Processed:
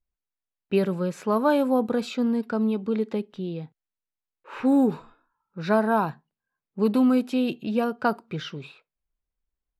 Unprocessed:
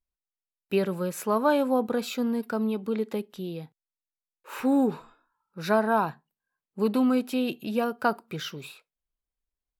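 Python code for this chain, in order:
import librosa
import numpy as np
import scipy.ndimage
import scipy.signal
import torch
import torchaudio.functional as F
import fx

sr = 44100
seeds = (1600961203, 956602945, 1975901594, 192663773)

y = fx.env_lowpass(x, sr, base_hz=2700.0, full_db=-19.5)
y = fx.low_shelf(y, sr, hz=320.0, db=5.5)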